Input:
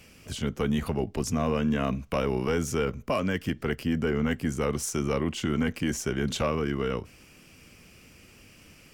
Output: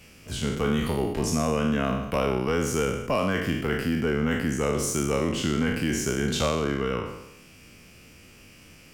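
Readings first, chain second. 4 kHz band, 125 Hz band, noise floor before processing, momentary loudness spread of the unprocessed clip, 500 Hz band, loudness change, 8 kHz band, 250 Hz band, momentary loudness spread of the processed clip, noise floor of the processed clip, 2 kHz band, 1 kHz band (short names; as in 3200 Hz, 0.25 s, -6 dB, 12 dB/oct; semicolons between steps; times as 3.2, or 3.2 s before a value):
+4.0 dB, +2.0 dB, -54 dBFS, 4 LU, +2.5 dB, +2.5 dB, +4.5 dB, +2.0 dB, 3 LU, -51 dBFS, +4.0 dB, +3.5 dB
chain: spectral trails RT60 0.91 s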